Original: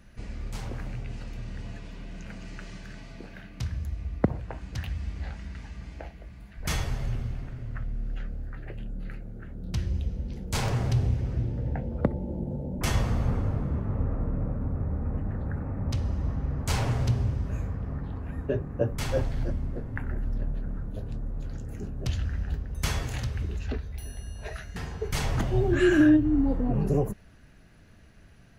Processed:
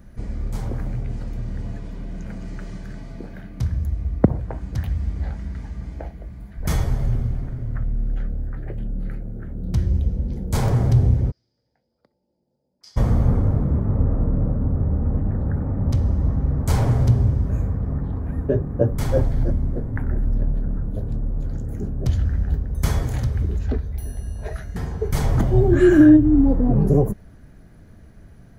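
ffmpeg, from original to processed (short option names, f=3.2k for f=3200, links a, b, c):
-filter_complex "[0:a]asplit=3[a][b][c];[a]afade=t=out:st=11.3:d=0.02[d];[b]bandpass=f=4.9k:t=q:w=12,afade=t=in:st=11.3:d=0.02,afade=t=out:st=12.96:d=0.02[e];[c]afade=t=in:st=12.96:d=0.02[f];[d][e][f]amix=inputs=3:normalize=0,equalizer=f=3.5k:w=0.32:g=-11,bandreject=f=2.7k:w=7.9,volume=9dB"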